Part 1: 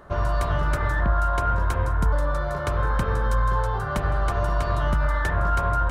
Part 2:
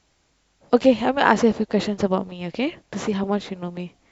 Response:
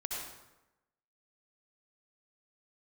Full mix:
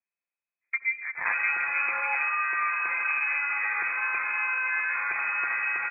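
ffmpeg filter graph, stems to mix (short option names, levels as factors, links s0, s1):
-filter_complex "[0:a]lowshelf=f=130:g=-8,alimiter=limit=0.0631:level=0:latency=1:release=107,adelay=1150,volume=1.06,asplit=2[s0][s1];[s1]volume=0.447[s2];[1:a]afwtdn=0.0631,volume=0.178,asplit=2[s3][s4];[s4]volume=0.178[s5];[2:a]atrim=start_sample=2205[s6];[s2][s5]amix=inputs=2:normalize=0[s7];[s7][s6]afir=irnorm=-1:irlink=0[s8];[s0][s3][s8]amix=inputs=3:normalize=0,aecho=1:1:5.8:0.31,lowpass=f=2200:t=q:w=0.5098,lowpass=f=2200:t=q:w=0.6013,lowpass=f=2200:t=q:w=0.9,lowpass=f=2200:t=q:w=2.563,afreqshift=-2600"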